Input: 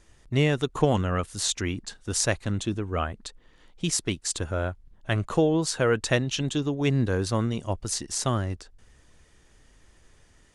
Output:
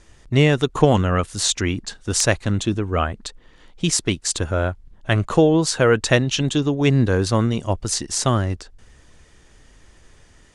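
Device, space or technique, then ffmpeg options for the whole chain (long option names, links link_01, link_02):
overflowing digital effects unit: -af "aeval=exprs='(mod(2.37*val(0)+1,2)-1)/2.37':channel_layout=same,lowpass=10000,volume=7dB"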